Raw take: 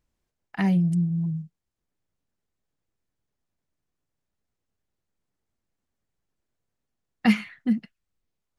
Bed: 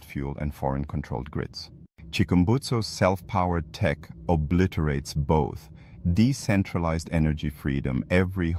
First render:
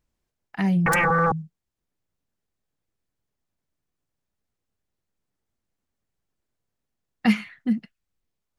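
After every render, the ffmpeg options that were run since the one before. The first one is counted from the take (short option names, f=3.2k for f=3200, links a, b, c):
-filter_complex "[0:a]asettb=1/sr,asplit=3[a][b][c];[a]atrim=end=0.864[d];[b]atrim=start=0.86:end=1.32,asetpts=PTS-STARTPTS,afade=t=in:d=0.004:c=qsin,afade=t=out:st=0.456:d=0.004:c=qsin,aeval=exprs='0.141*sin(PI/2*10*val(0)/0.141)':c=same[e];[c]atrim=start=1.316[f];[d][e]acrossfade=d=0.004:c1=hsin:c2=qsin[g];[g][f]acrossfade=d=0.004:c1=qsin:c2=hsin"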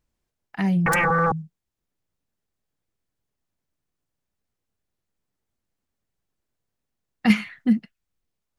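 -filter_complex "[0:a]asplit=3[a][b][c];[a]atrim=end=7.302[d];[b]atrim=start=7.298:end=7.772,asetpts=PTS-STARTPTS,volume=4dB[e];[c]atrim=start=7.768[f];[d][e]acrossfade=d=0.004:c1=hsin:c2=hsin[g];[g][f]acrossfade=d=0.004:c1=hsin:c2=hsin"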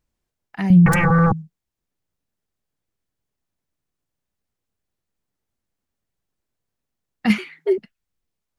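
-filter_complex "[0:a]asettb=1/sr,asplit=3[a][b][c];[a]atrim=end=0.704[d];[b]atrim=start=0.7:end=1.33,asetpts=PTS-STARTPTS,afade=t=in:d=0.004:c=qsin,afade=t=out:st=0.626:d=0.004:c=qsin,bass=f=250:g=14,treble=f=4k:g=0[e];[c]atrim=start=1.326[f];[d][e]acrossfade=d=0.004:c1=hsin:c2=qsin[g];[g][f]acrossfade=d=0.004:c1=qsin:c2=hsin,asettb=1/sr,asplit=3[h][i][j];[h]atrim=end=7.384[k];[i]atrim=start=7.38:end=7.78,asetpts=PTS-STARTPTS,afade=t=in:d=0.004:c=qsin,afade=t=out:st=0.396:d=0.004:c=qsin,afreqshift=160[l];[j]atrim=start=7.776[m];[k][l]acrossfade=d=0.004:c1=hsin:c2=qsin[n];[n][m]acrossfade=d=0.004:c1=qsin:c2=hsin"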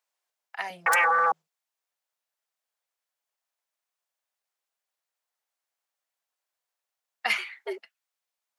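-af "highpass=f=620:w=0.5412,highpass=f=620:w=1.3066"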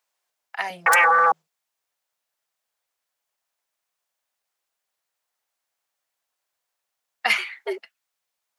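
-af "volume=5.5dB"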